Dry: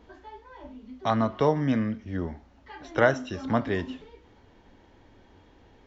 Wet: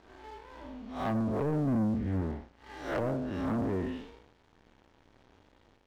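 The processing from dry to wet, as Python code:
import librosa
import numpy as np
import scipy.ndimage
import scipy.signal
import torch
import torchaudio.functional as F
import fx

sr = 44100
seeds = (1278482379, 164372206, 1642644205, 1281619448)

y = fx.spec_blur(x, sr, span_ms=169.0)
y = fx.env_lowpass_down(y, sr, base_hz=430.0, full_db=-24.0)
y = fx.low_shelf(y, sr, hz=290.0, db=5.5, at=(1.67, 2.21))
y = fx.leveller(y, sr, passes=3)
y = y * 10.0 ** (-8.5 / 20.0)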